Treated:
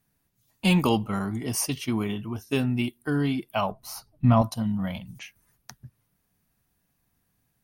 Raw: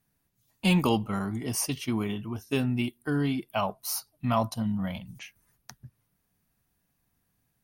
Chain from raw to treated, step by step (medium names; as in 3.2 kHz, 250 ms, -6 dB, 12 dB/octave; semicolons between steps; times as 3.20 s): 3.71–4.42 s: tilt EQ -3 dB/octave; trim +2 dB